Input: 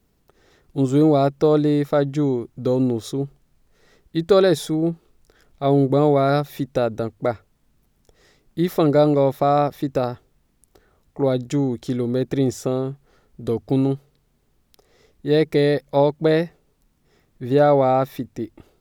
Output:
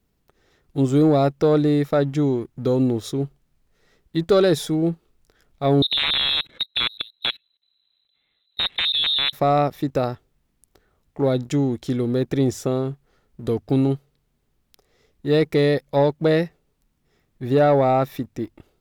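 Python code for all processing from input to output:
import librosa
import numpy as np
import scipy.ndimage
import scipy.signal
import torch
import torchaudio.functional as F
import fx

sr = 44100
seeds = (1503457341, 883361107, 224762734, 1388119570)

y = fx.chain(x, sr, fx.level_steps(step_db=22),
    fx.overflow_wrap(gain_db=15.5),
    fx.freq_invert(carrier_hz=4000), at=(5.82, 9.33))
y = fx.high_shelf(y, sr, hz=3200.0, db=9.5)
y = fx.leveller(y, sr, passes=1)
y = fx.bass_treble(y, sr, bass_db=2, treble_db=-8)
y = y * 10.0 ** (-4.5 / 20.0)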